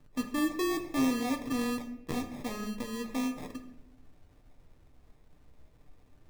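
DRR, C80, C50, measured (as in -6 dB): 4.0 dB, 13.0 dB, 10.5 dB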